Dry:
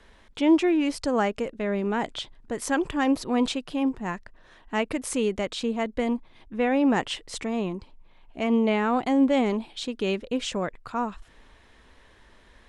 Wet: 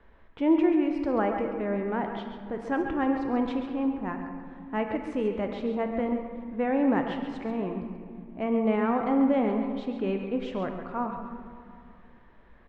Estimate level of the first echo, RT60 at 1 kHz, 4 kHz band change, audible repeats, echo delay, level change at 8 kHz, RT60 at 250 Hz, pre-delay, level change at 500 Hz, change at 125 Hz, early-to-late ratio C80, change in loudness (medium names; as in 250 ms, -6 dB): -11.5 dB, 2.3 s, -14.0 dB, 1, 133 ms, under -25 dB, 3.1 s, 12 ms, -1.5 dB, -1.5 dB, 5.0 dB, -2.0 dB